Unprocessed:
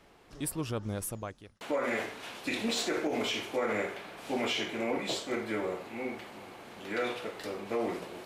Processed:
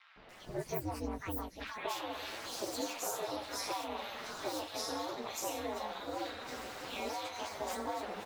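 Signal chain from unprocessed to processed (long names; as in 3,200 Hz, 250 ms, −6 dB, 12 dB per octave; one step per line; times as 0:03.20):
phase-vocoder pitch shift without resampling +9.5 semitones
downward compressor 10 to 1, threshold −44 dBFS, peak gain reduction 15.5 dB
ring modulation 110 Hz
three-band delay without the direct sound mids, lows, highs 160/290 ms, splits 1,200/3,700 Hz
level +12.5 dB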